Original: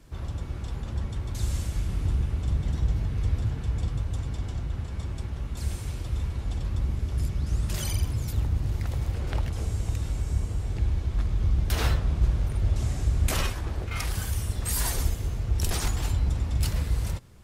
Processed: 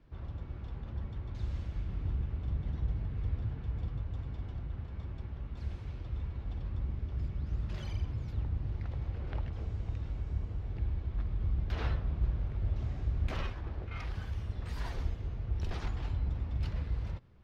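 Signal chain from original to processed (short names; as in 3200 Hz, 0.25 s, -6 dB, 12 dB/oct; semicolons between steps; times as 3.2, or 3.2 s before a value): air absorption 260 m; gain -8 dB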